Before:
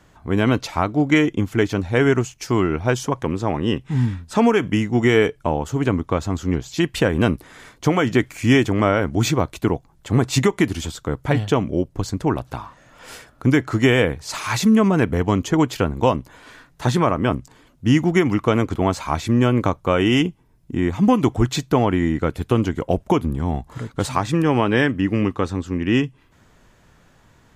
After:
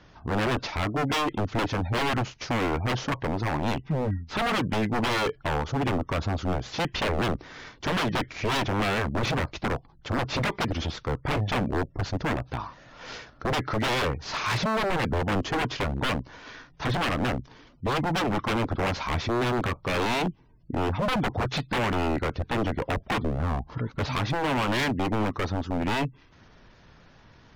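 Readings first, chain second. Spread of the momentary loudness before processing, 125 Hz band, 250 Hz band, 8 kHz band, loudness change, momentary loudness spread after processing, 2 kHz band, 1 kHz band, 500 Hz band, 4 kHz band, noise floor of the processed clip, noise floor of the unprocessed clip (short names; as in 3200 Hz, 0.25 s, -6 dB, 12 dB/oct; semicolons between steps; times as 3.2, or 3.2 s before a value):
8 LU, -8.0 dB, -11.0 dB, -9.0 dB, -7.5 dB, 6 LU, -4.0 dB, -3.0 dB, -9.0 dB, -2.5 dB, -55 dBFS, -55 dBFS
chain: CVSD 32 kbps; spectral gate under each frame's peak -30 dB strong; wavefolder -20.5 dBFS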